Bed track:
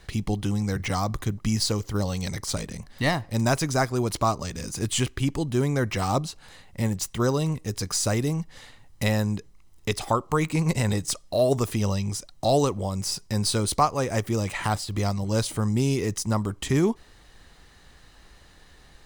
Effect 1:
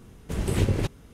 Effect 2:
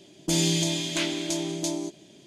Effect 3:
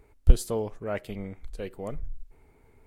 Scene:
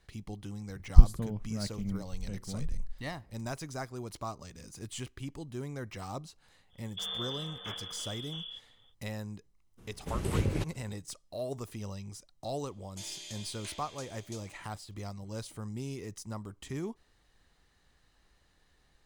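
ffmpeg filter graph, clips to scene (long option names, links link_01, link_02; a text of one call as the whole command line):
ffmpeg -i bed.wav -i cue0.wav -i cue1.wav -i cue2.wav -filter_complex "[2:a]asplit=2[link_01][link_02];[0:a]volume=-15.5dB[link_03];[3:a]lowshelf=frequency=280:width_type=q:width=1.5:gain=13[link_04];[link_01]lowpass=frequency=3100:width_type=q:width=0.5098,lowpass=frequency=3100:width_type=q:width=0.6013,lowpass=frequency=3100:width_type=q:width=0.9,lowpass=frequency=3100:width_type=q:width=2.563,afreqshift=-3700[link_05];[link_02]highpass=830[link_06];[link_04]atrim=end=2.86,asetpts=PTS-STARTPTS,volume=-12dB,afade=type=in:duration=0.004:curve=hsin,afade=type=out:start_time=2.856:duration=0.004:curve=hsin,adelay=690[link_07];[link_05]atrim=end=2.26,asetpts=PTS-STARTPTS,volume=-13dB,afade=type=in:duration=0.05,afade=type=out:start_time=2.21:duration=0.05,adelay=6690[link_08];[1:a]atrim=end=1.13,asetpts=PTS-STARTPTS,volume=-6.5dB,afade=type=in:duration=0.02,afade=type=out:start_time=1.11:duration=0.02,adelay=9770[link_09];[link_06]atrim=end=2.26,asetpts=PTS-STARTPTS,volume=-17dB,afade=type=in:duration=0.004:curve=hsin,afade=type=out:start_time=2.256:duration=0.004:curve=hsin,adelay=559188S[link_10];[link_03][link_07][link_08][link_09][link_10]amix=inputs=5:normalize=0" out.wav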